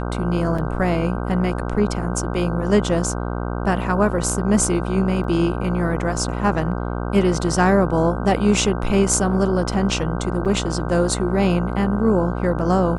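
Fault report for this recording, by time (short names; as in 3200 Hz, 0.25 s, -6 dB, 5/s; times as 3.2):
buzz 60 Hz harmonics 26 -25 dBFS
0.58 gap 4.7 ms
5.24 gap 2.5 ms
10.45–10.46 gap 7.1 ms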